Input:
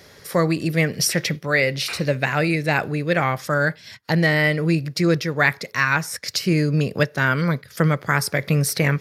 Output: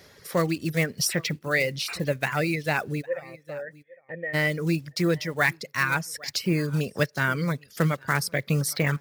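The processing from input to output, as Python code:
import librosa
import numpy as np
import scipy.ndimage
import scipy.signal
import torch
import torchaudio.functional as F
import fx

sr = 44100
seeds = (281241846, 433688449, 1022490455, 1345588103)

y = fx.block_float(x, sr, bits=5)
y = fx.formant_cascade(y, sr, vowel='e', at=(3.01, 4.33), fade=0.02)
y = y + 10.0 ** (-20.0 / 20.0) * np.pad(y, (int(807 * sr / 1000.0), 0))[:len(y)]
y = fx.dereverb_blind(y, sr, rt60_s=0.66)
y = y * 10.0 ** (-4.5 / 20.0)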